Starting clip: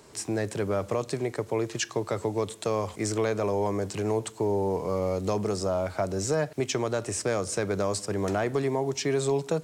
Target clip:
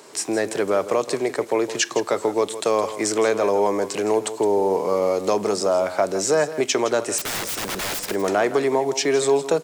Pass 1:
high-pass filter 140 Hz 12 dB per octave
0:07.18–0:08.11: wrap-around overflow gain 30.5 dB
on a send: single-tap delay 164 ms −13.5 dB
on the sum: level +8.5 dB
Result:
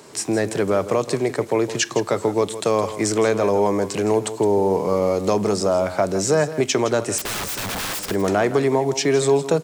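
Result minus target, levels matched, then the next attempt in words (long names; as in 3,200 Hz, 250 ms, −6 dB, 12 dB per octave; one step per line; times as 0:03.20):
125 Hz band +9.5 dB
high-pass filter 310 Hz 12 dB per octave
0:07.18–0:08.11: wrap-around overflow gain 30.5 dB
on a send: single-tap delay 164 ms −13.5 dB
on the sum: level +8.5 dB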